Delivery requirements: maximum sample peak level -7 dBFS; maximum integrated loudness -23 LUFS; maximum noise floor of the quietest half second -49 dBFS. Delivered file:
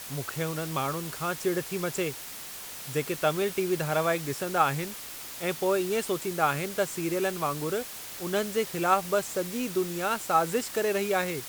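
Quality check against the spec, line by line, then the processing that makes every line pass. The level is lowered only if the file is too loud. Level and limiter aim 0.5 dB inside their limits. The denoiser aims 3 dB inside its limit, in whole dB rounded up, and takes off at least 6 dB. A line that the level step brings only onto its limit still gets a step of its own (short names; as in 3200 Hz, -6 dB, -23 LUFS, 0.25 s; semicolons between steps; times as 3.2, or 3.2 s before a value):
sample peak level -8.5 dBFS: OK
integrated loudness -29.0 LUFS: OK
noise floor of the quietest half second -41 dBFS: fail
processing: denoiser 11 dB, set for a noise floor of -41 dBFS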